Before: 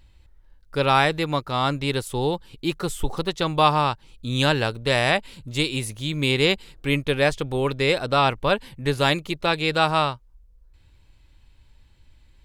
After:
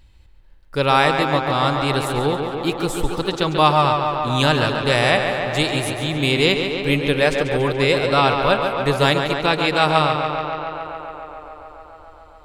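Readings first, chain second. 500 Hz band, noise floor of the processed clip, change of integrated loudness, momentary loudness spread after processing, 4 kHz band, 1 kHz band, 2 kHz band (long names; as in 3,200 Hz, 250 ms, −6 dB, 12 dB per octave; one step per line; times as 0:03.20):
+5.0 dB, −47 dBFS, +4.0 dB, 10 LU, +3.5 dB, +5.0 dB, +4.0 dB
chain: tape delay 141 ms, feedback 87%, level −5.5 dB, low-pass 4,400 Hz
level +2.5 dB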